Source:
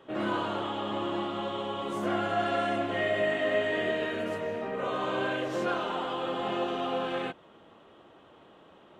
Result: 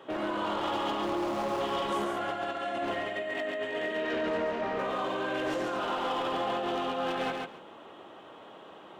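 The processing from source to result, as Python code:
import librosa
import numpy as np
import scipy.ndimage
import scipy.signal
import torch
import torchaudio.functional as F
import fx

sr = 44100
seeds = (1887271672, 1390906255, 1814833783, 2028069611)

y = fx.median_filter(x, sr, points=25, at=(1.03, 1.61))
y = fx.highpass(y, sr, hz=240.0, slope=6)
y = fx.peak_eq(y, sr, hz=840.0, db=2.5, octaves=0.79)
y = fx.over_compress(y, sr, threshold_db=-34.0, ratio=-1.0)
y = np.clip(y, -10.0 ** (-29.0 / 20.0), 10.0 ** (-29.0 / 20.0))
y = fx.air_absorb(y, sr, metres=84.0, at=(3.97, 4.79))
y = fx.echo_feedback(y, sr, ms=138, feedback_pct=17, wet_db=-4.0)
y = fx.transformer_sat(y, sr, knee_hz=360.0)
y = F.gain(torch.from_numpy(y), 2.0).numpy()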